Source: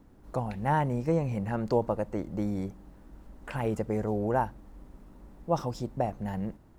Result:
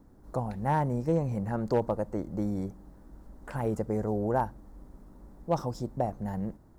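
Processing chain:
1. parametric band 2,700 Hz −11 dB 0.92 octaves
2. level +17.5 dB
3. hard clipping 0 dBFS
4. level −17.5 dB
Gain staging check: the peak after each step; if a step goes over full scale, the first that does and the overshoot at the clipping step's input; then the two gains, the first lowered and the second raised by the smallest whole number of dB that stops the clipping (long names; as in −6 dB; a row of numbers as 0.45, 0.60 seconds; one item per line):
−13.5, +4.0, 0.0, −17.5 dBFS
step 2, 4.0 dB
step 2 +13.5 dB, step 4 −13.5 dB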